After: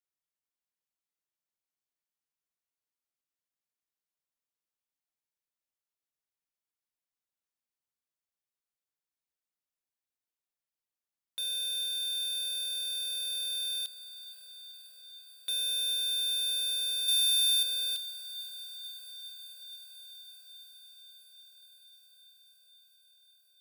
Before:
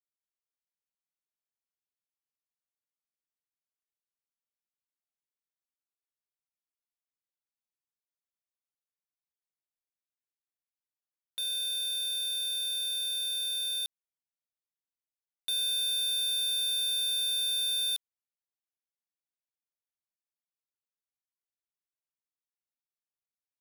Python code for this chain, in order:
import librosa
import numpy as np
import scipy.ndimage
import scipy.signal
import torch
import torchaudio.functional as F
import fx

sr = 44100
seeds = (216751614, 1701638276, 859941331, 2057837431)

y = fx.peak_eq(x, sr, hz=15000.0, db=7.0, octaves=2.8, at=(17.08, 17.63))
y = fx.echo_diffused(y, sr, ms=508, feedback_pct=78, wet_db=-13)
y = y * 10.0 ** (-1.0 / 20.0)